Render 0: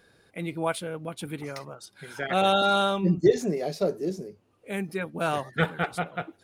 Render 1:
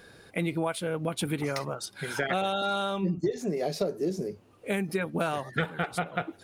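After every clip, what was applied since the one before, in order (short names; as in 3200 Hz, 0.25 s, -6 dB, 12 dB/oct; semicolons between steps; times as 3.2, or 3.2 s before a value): compressor 12:1, threshold -33 dBFS, peak gain reduction 20 dB; gain +8 dB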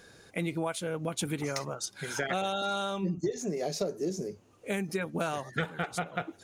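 bell 6500 Hz +10.5 dB 0.5 oct; gain -3 dB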